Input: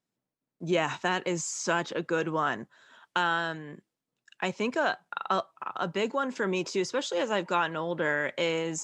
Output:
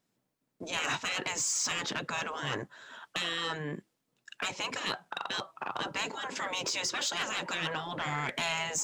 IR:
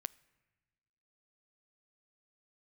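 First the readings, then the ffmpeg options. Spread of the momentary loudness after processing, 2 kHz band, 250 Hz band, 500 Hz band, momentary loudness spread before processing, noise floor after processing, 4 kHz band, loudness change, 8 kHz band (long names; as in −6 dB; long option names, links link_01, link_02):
8 LU, −3.0 dB, −10.0 dB, −11.5 dB, 7 LU, −80 dBFS, +3.5 dB, −3.5 dB, +4.5 dB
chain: -af "afftfilt=real='re*lt(hypot(re,im),0.0708)':imag='im*lt(hypot(re,im),0.0708)':win_size=1024:overlap=0.75,aeval=exprs='0.0841*(cos(1*acos(clip(val(0)/0.0841,-1,1)))-cos(1*PI/2))+0.0119*(cos(5*acos(clip(val(0)/0.0841,-1,1)))-cos(5*PI/2))':channel_layout=same,volume=2.5dB"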